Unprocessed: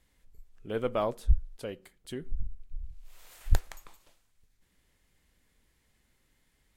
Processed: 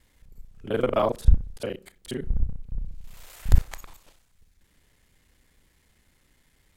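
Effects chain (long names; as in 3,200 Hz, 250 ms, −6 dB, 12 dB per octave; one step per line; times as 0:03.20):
reversed piece by piece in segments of 32 ms
level +7 dB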